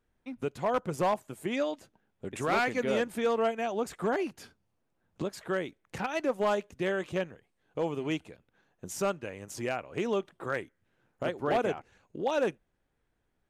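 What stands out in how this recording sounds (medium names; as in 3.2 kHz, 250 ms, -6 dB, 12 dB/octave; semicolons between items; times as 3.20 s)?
noise floor -78 dBFS; spectral tilt -4.0 dB/octave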